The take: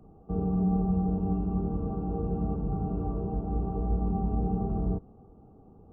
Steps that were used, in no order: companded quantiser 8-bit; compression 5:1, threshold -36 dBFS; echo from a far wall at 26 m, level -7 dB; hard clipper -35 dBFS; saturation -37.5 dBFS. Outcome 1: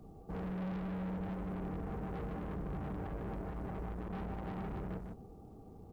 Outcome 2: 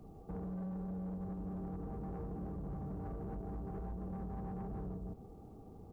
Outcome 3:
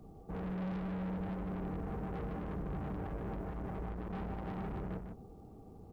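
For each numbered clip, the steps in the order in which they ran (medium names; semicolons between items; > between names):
hard clipper > saturation > echo from a far wall > companded quantiser > compression; echo from a far wall > companded quantiser > compression > hard clipper > saturation; hard clipper > saturation > compression > companded quantiser > echo from a far wall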